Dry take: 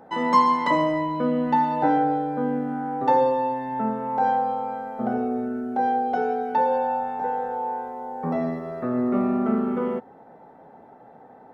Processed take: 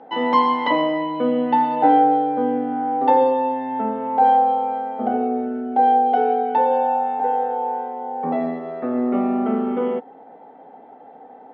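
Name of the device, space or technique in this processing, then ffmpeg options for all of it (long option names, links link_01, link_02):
kitchen radio: -af "highpass=200,equalizer=frequency=270:width_type=q:width=4:gain=8,equalizer=frequency=470:width_type=q:width=4:gain=7,equalizer=frequency=770:width_type=q:width=4:gain=9,equalizer=frequency=2200:width_type=q:width=4:gain=5,equalizer=frequency=3100:width_type=q:width=4:gain=10,lowpass=frequency=4500:width=0.5412,lowpass=frequency=4500:width=1.3066,volume=-1.5dB"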